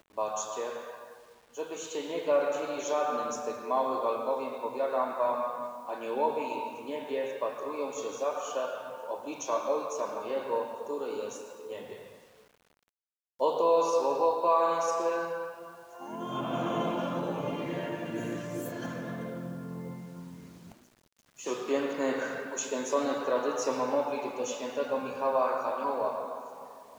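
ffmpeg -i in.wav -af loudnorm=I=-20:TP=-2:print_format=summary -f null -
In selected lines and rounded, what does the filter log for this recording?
Input Integrated:    -31.9 LUFS
Input True Peak:     -13.8 dBTP
Input LRA:             6.9 LU
Input Threshold:     -42.5 LUFS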